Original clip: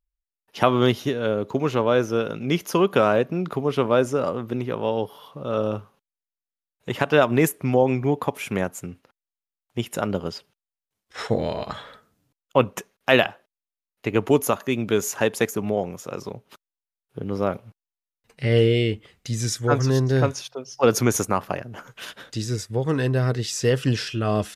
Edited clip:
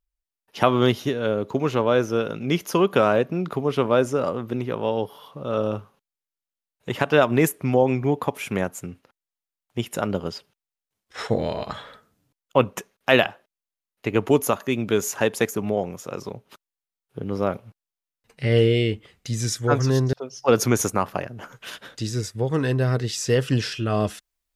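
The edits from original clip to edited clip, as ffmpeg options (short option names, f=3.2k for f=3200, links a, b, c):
-filter_complex "[0:a]asplit=2[a][b];[a]atrim=end=20.132[c];[b]atrim=start=20.478[d];[c][d]acrossfade=d=0.004:c1=hsin:c2=hsin"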